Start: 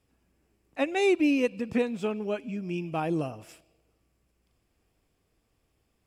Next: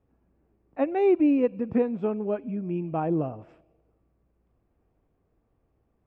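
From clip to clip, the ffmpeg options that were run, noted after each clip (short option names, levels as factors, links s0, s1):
-af "lowpass=1100,volume=1.41"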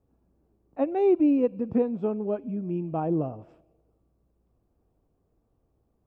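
-af "equalizer=f=2000:w=1.2:g=-9"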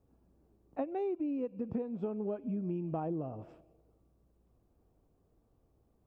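-af "acompressor=threshold=0.0251:ratio=16"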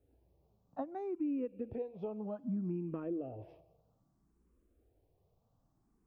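-filter_complex "[0:a]asplit=2[s0][s1];[s1]afreqshift=0.62[s2];[s0][s2]amix=inputs=2:normalize=1"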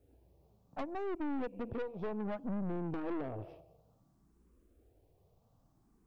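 -af "aeval=exprs='(tanh(141*val(0)+0.6)-tanh(0.6))/141':c=same,volume=2.51"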